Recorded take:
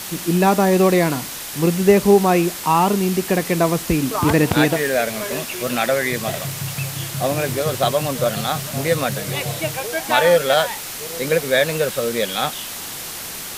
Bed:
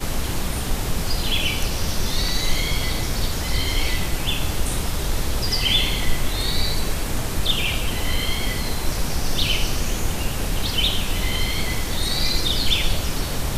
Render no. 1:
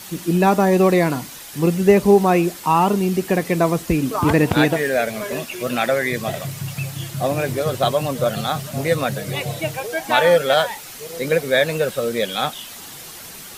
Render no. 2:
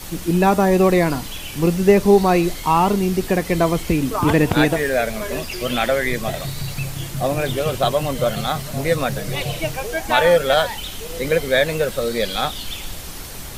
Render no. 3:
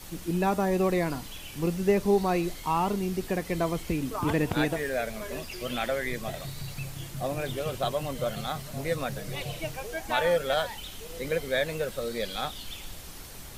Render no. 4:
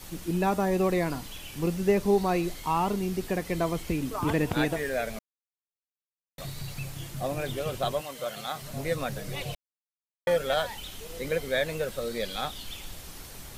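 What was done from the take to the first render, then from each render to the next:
broadband denoise 8 dB, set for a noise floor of −31 dBFS
mix in bed −11.5 dB
level −10.5 dB
0:05.19–0:06.38: silence; 0:08.00–0:08.61: high-pass filter 970 Hz → 360 Hz 6 dB per octave; 0:09.55–0:10.27: silence

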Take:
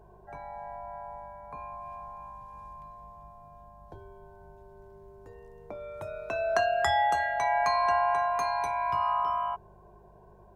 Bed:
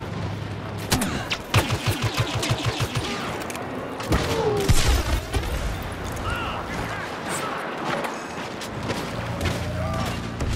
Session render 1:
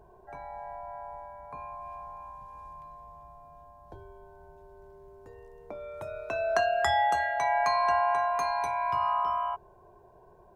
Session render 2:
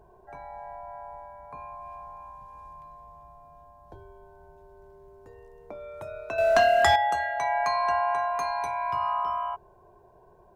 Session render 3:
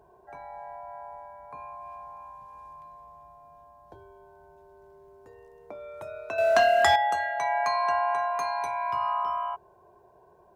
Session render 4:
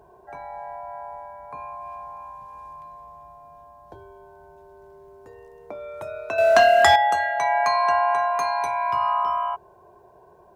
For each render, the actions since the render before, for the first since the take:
hum removal 50 Hz, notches 4
0:06.38–0:06.96: leveller curve on the samples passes 2
high-pass filter 46 Hz; low-shelf EQ 190 Hz −7 dB
level +5.5 dB

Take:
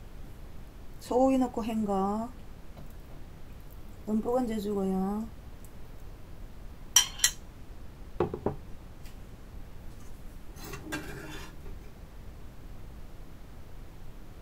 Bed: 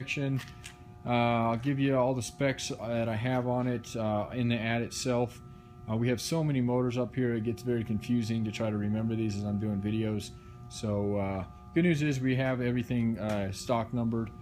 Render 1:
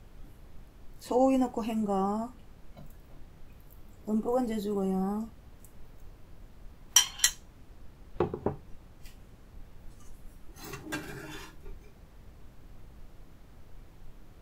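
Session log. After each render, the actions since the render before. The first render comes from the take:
noise reduction from a noise print 6 dB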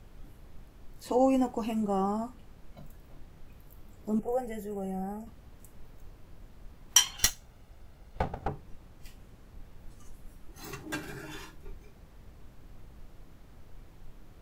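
0:04.19–0:05.27: phaser with its sweep stopped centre 1,100 Hz, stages 6
0:07.17–0:08.48: lower of the sound and its delayed copy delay 1.4 ms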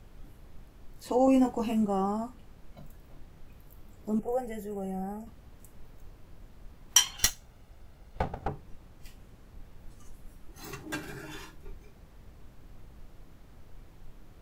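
0:01.25–0:01.85: double-tracking delay 23 ms −4 dB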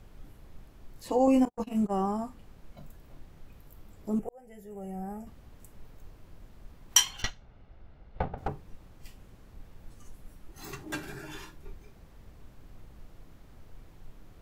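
0:01.45–0:01.94: noise gate −30 dBFS, range −45 dB
0:04.29–0:05.23: fade in
0:07.22–0:08.38: high-frequency loss of the air 240 metres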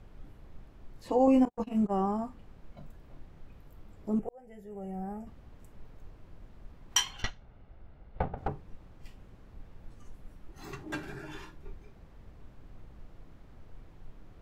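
low-pass filter 2,800 Hz 6 dB per octave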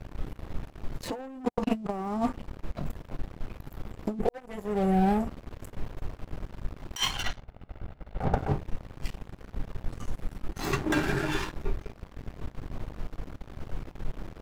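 leveller curve on the samples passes 3
compressor whose output falls as the input rises −25 dBFS, ratio −0.5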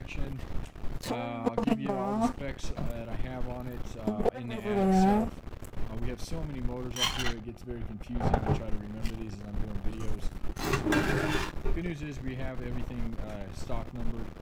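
mix in bed −10 dB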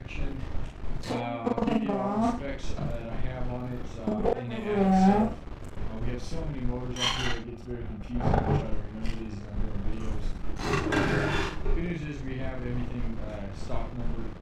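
high-frequency loss of the air 58 metres
loudspeakers that aren't time-aligned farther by 14 metres −1 dB, 36 metres −11 dB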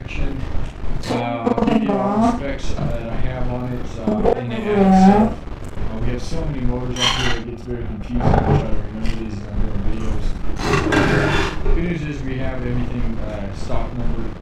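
level +10 dB
brickwall limiter −2 dBFS, peak gain reduction 1.5 dB

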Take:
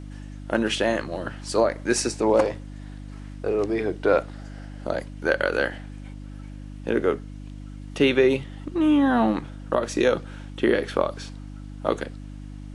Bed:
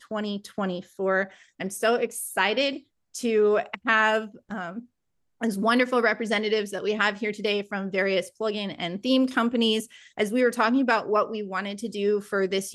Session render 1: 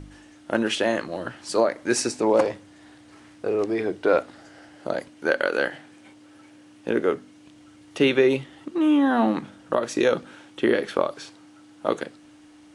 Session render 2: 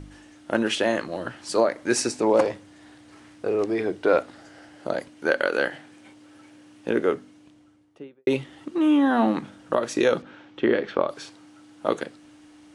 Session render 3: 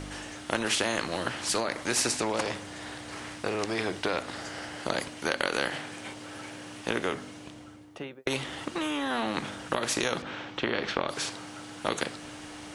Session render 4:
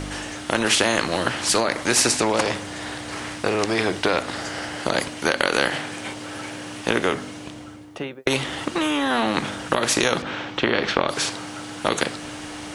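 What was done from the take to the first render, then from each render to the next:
hum removal 50 Hz, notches 5
0:07.06–0:08.27: fade out and dull; 0:10.22–0:11.09: high-frequency loss of the air 170 metres
downward compressor, threshold −21 dBFS, peak gain reduction 7.5 dB; every bin compressed towards the loudest bin 2 to 1
level +8.5 dB; brickwall limiter −2 dBFS, peak gain reduction 3 dB

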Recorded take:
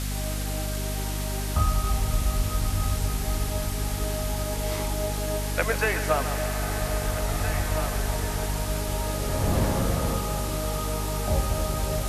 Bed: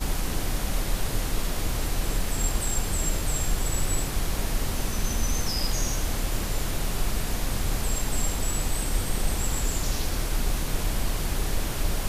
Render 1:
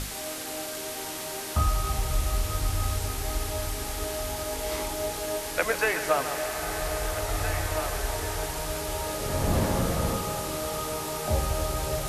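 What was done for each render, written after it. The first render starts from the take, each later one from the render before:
mains-hum notches 50/100/150/200/250 Hz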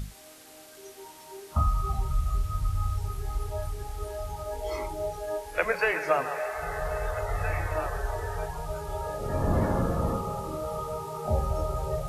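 noise reduction from a noise print 15 dB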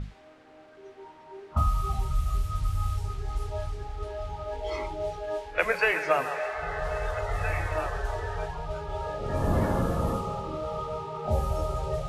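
low-pass that shuts in the quiet parts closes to 1,600 Hz, open at −22.5 dBFS
dynamic equaliser 3,000 Hz, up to +5 dB, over −52 dBFS, Q 1.3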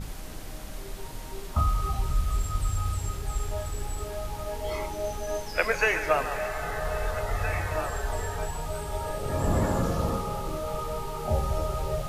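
mix in bed −12 dB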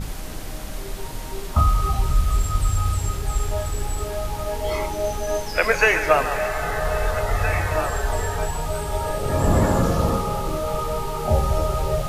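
level +7 dB
brickwall limiter −2 dBFS, peak gain reduction 2.5 dB

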